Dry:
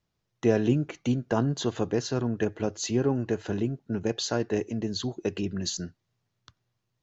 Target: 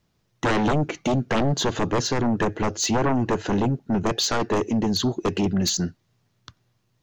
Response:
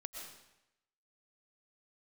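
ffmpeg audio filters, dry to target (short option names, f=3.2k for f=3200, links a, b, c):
-af "equalizer=f=220:t=o:w=1.2:g=3,aeval=exprs='0.376*sin(PI/2*5.01*val(0)/0.376)':c=same,volume=-8.5dB"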